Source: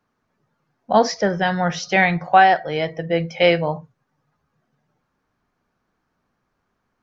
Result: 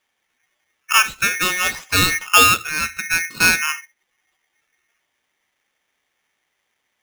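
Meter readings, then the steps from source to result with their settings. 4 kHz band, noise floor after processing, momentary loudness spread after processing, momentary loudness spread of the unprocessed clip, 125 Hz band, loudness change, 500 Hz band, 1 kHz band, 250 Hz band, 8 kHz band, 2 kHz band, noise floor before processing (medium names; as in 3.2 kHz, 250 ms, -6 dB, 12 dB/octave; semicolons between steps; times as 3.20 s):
+8.5 dB, -74 dBFS, 11 LU, 11 LU, -5.0 dB, +2.5 dB, -13.0 dB, -4.0 dB, -7.5 dB, no reading, +5.0 dB, -74 dBFS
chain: low-pass 3.6 kHz 24 dB/octave; polarity switched at an audio rate 2 kHz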